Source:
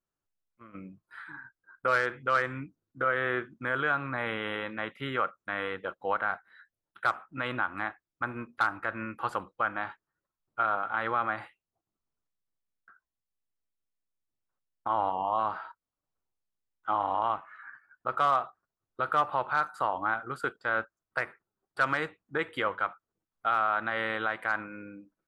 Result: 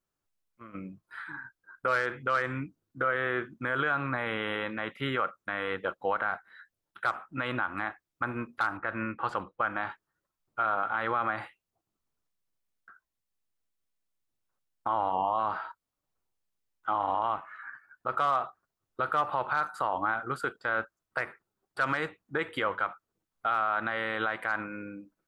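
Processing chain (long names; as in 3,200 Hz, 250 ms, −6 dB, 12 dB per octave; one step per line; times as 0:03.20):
0:08.77–0:09.70: low-pass that shuts in the quiet parts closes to 1,200 Hz, open at −24 dBFS
brickwall limiter −21.5 dBFS, peak gain reduction 6.5 dB
level +3.5 dB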